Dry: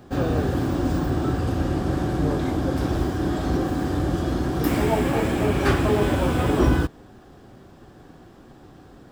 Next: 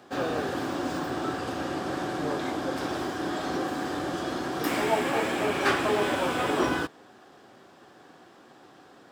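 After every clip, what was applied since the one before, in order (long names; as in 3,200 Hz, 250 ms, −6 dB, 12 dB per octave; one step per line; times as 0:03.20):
meter weighting curve A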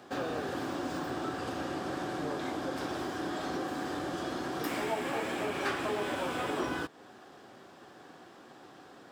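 downward compressor 2 to 1, threshold −36 dBFS, peak gain reduction 9.5 dB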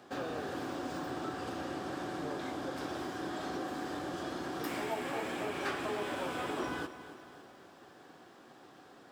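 feedback echo at a low word length 276 ms, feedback 55%, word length 10 bits, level −13.5 dB
level −3.5 dB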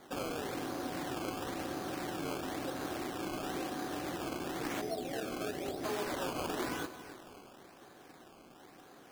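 gain on a spectral selection 0:04.81–0:05.83, 800–3,300 Hz −30 dB
sample-and-hold swept by an LFO 16×, swing 100% 0.98 Hz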